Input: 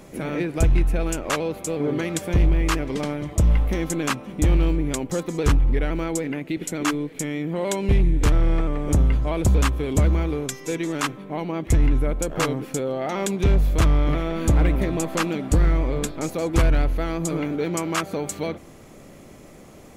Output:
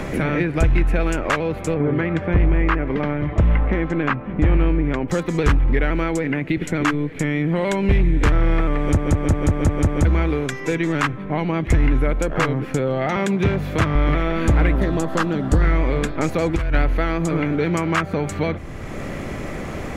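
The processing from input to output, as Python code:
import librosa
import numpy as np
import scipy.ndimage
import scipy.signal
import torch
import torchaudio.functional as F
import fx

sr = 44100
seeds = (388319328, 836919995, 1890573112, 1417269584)

y = fx.lowpass(x, sr, hz=1900.0, slope=12, at=(1.74, 5.08))
y = fx.highpass(y, sr, hz=97.0, slope=24, at=(13.16, 13.95))
y = fx.peak_eq(y, sr, hz=2300.0, db=-12.5, octaves=0.42, at=(14.73, 15.62))
y = fx.over_compress(y, sr, threshold_db=-20.0, ratio=-0.5, at=(16.18, 16.73), fade=0.02)
y = fx.edit(y, sr, fx.stutter_over(start_s=8.79, slice_s=0.18, count=7), tone=tone)
y = fx.lowpass(y, sr, hz=3100.0, slope=6)
y = fx.peak_eq(y, sr, hz=1800.0, db=7.5, octaves=1.2)
y = fx.band_squash(y, sr, depth_pct=70)
y = F.gain(torch.from_numpy(y), 2.5).numpy()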